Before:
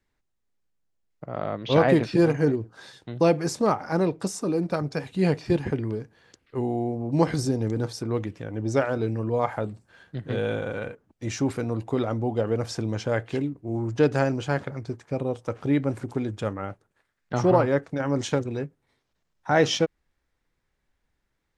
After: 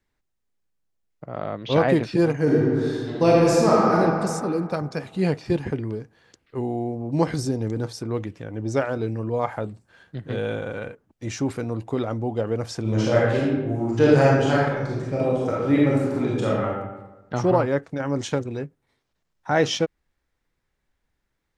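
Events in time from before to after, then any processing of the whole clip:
2.42–3.96 reverb throw, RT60 2.3 s, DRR -5.5 dB
12.81–16.67 reverb throw, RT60 1.1 s, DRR -6 dB

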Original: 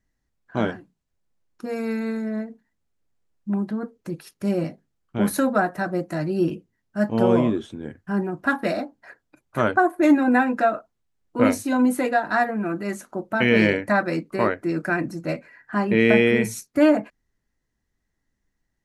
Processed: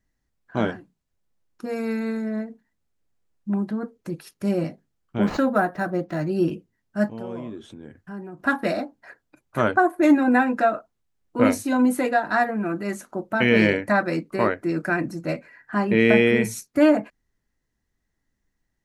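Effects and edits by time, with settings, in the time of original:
5.23–6.29 decimation joined by straight lines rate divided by 4×
7.08–8.4 compressor 2:1, threshold -42 dBFS

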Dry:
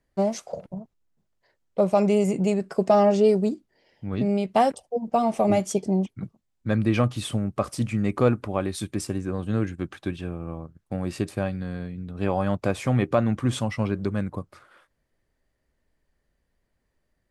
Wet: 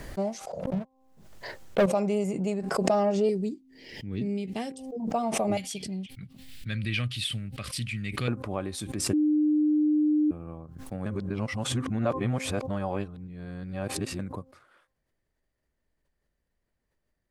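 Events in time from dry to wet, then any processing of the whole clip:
0.65–1.86 sample leveller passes 3
3.29–5 band shelf 890 Hz -13 dB
5.57–8.28 EQ curve 130 Hz 0 dB, 320 Hz -11 dB, 960 Hz -16 dB, 1900 Hz +6 dB, 3000 Hz +11 dB, 4500 Hz +9 dB, 6400 Hz -2 dB, 9100 Hz +4 dB
9.13–10.31 bleep 302 Hz -13.5 dBFS
11.06–14.19 reverse
whole clip: de-hum 262.4 Hz, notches 4; backwards sustainer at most 56 dB/s; gain -6.5 dB

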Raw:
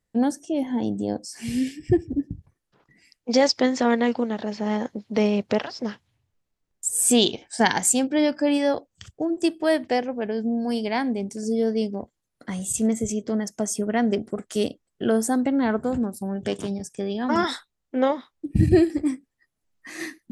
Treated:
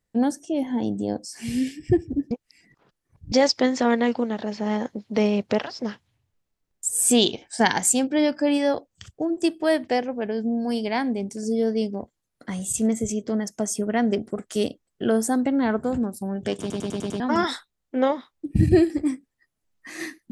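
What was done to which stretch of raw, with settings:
2.31–3.32 reverse
16.6 stutter in place 0.10 s, 6 plays

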